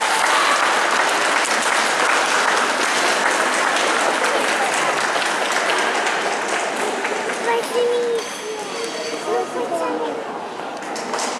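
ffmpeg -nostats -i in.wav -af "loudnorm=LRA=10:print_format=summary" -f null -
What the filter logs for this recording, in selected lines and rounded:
Input Integrated:    -19.4 LUFS
Input True Peak:      -3.2 dBTP
Input LRA:             7.6 LU
Input Threshold:     -29.4 LUFS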